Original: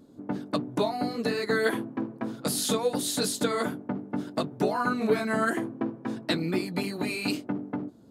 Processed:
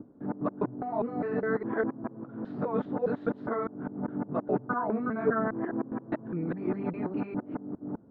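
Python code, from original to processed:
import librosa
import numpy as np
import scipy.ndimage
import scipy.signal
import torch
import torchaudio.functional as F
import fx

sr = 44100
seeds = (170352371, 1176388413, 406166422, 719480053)

y = fx.local_reverse(x, sr, ms=204.0)
y = scipy.signal.sosfilt(scipy.signal.butter(4, 1500.0, 'lowpass', fs=sr, output='sos'), y)
y = y * librosa.db_to_amplitude(-2.0)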